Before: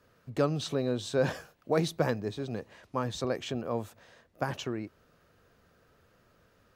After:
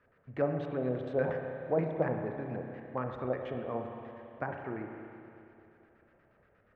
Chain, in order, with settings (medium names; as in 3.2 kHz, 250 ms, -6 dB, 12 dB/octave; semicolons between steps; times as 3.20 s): LFO low-pass square 8.4 Hz 730–2000 Hz; spring tank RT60 2.7 s, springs 31/55 ms, chirp 50 ms, DRR 3.5 dB; dynamic bell 5.2 kHz, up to -8 dB, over -53 dBFS, Q 0.72; trim -6 dB